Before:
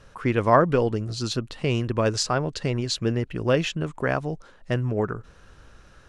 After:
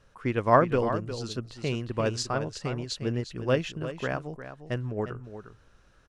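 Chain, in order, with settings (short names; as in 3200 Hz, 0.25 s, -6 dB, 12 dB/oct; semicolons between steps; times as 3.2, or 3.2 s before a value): echo 0.355 s -8 dB; upward expander 1.5:1, over -30 dBFS; gain -1.5 dB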